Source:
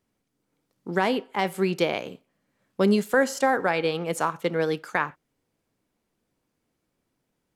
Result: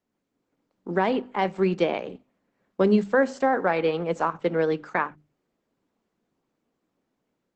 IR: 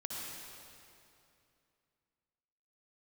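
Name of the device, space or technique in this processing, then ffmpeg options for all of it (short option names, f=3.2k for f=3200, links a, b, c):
video call: -filter_complex "[0:a]aemphasis=mode=reproduction:type=bsi,asettb=1/sr,asplit=3[a][b][c];[a]atrim=end=1.844[d];[b]atrim=start=1.84:end=2.84,asetpts=PTS-STARTPTS,afade=t=in:d=0.004:c=qsin,afade=t=out:st=0.996:d=0.004:c=qsin,lowpass=8.2k[e];[c]atrim=start=2.836[f];[d][e]acrossfade=d=0.004:c1=hsin:c2=qsin[g];[g][f]acrossfade=d=0.004:c1=qsin:c2=hsin,highpass=f=180:w=0.5412,highpass=f=180:w=1.3066,equalizer=f=880:w=0.56:g=3.5,bandreject=f=50:t=h:w=6,bandreject=f=100:t=h:w=6,bandreject=f=150:t=h:w=6,bandreject=f=200:t=h:w=6,bandreject=f=250:t=h:w=6,bandreject=f=300:t=h:w=6,dynaudnorm=f=120:g=3:m=5dB,volume=-6.5dB" -ar 48000 -c:a libopus -b:a 12k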